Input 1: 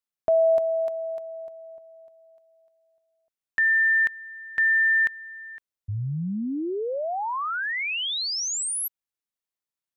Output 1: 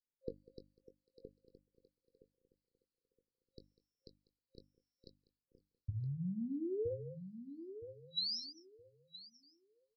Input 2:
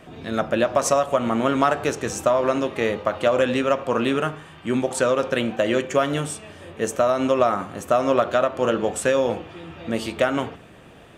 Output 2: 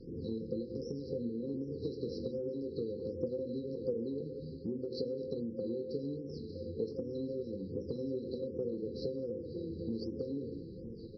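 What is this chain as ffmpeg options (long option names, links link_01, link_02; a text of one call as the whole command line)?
ffmpeg -i in.wav -filter_complex "[0:a]acrossover=split=430|2100[link_01][link_02][link_03];[link_02]acompressor=threshold=-32dB:ratio=6:attack=59:release=28:knee=2.83:detection=peak[link_04];[link_01][link_04][link_03]amix=inputs=3:normalize=0,afftfilt=real='re*(1-between(b*sr/4096,530,3900))':imag='im*(1-between(b*sr/4096,530,3900))':win_size=4096:overlap=0.75,asplit=2[link_05][link_06];[link_06]adelay=21,volume=-10dB[link_07];[link_05][link_07]amix=inputs=2:normalize=0,asplit=2[link_08][link_09];[link_09]aecho=0:1:197:0.0944[link_10];[link_08][link_10]amix=inputs=2:normalize=0,aresample=11025,aresample=44100,acompressor=threshold=-39dB:ratio=5:attack=43:release=148:knee=1:detection=peak,bandreject=frequency=50:width_type=h:width=6,bandreject=frequency=100:width_type=h:width=6,bandreject=frequency=150:width_type=h:width=6,bandreject=frequency=200:width_type=h:width=6,bandreject=frequency=250:width_type=h:width=6,bandreject=frequency=300:width_type=h:width=6,asplit=2[link_11][link_12];[link_12]adelay=968,lowpass=frequency=2100:poles=1,volume=-10dB,asplit=2[link_13][link_14];[link_14]adelay=968,lowpass=frequency=2100:poles=1,volume=0.22,asplit=2[link_15][link_16];[link_16]adelay=968,lowpass=frequency=2100:poles=1,volume=0.22[link_17];[link_13][link_15][link_17]amix=inputs=3:normalize=0[link_18];[link_11][link_18]amix=inputs=2:normalize=0,flanger=delay=0.4:depth=1.9:regen=84:speed=1.1:shape=sinusoidal,afftfilt=real='re*(1-between(b*sr/1024,800*pow(3800/800,0.5+0.5*sin(2*PI*1.3*pts/sr))/1.41,800*pow(3800/800,0.5+0.5*sin(2*PI*1.3*pts/sr))*1.41))':imag='im*(1-between(b*sr/1024,800*pow(3800/800,0.5+0.5*sin(2*PI*1.3*pts/sr))/1.41,800*pow(3800/800,0.5+0.5*sin(2*PI*1.3*pts/sr))*1.41))':win_size=1024:overlap=0.75,volume=4dB" out.wav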